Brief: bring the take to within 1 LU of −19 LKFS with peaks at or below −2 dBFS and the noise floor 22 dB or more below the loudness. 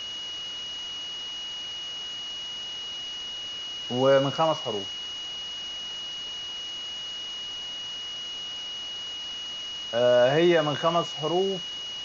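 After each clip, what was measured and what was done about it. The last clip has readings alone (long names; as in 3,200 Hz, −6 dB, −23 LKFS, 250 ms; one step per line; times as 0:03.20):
interfering tone 2,900 Hz; level of the tone −33 dBFS; background noise floor −36 dBFS; target noise floor −50 dBFS; integrated loudness −28.0 LKFS; sample peak −9.5 dBFS; target loudness −19.0 LKFS
→ notch filter 2,900 Hz, Q 30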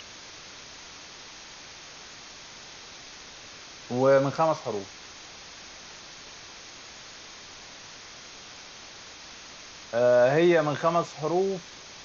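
interfering tone none found; background noise floor −46 dBFS; target noise floor −47 dBFS
→ noise reduction from a noise print 6 dB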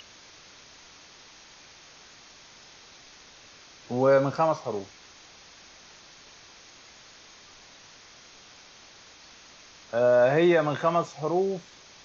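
background noise floor −52 dBFS; integrated loudness −24.5 LKFS; sample peak −10.5 dBFS; target loudness −19.0 LKFS
→ level +5.5 dB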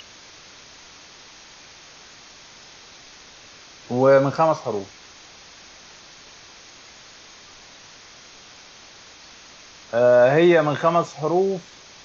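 integrated loudness −19.0 LKFS; sample peak −5.0 dBFS; background noise floor −46 dBFS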